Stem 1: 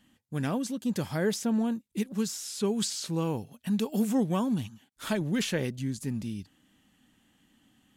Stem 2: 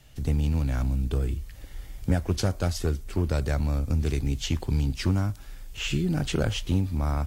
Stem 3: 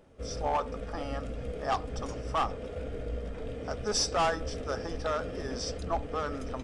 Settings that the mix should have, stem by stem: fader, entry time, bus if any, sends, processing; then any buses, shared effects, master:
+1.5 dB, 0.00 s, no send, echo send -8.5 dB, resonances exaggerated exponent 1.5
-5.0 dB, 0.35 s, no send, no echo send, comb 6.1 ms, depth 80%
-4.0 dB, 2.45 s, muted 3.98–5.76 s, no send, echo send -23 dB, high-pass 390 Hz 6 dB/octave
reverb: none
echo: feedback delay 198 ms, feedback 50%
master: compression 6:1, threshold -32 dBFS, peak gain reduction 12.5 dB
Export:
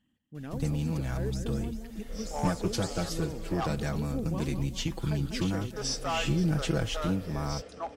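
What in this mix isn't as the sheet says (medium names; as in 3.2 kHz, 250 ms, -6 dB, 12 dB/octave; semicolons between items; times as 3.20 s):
stem 1 +1.5 dB -> -10.0 dB; stem 3: entry 2.45 s -> 1.90 s; master: missing compression 6:1, threshold -32 dBFS, peak gain reduction 12.5 dB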